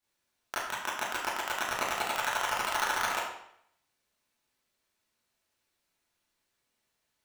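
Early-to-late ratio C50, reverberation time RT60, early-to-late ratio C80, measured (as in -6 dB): 1.0 dB, 0.70 s, 4.5 dB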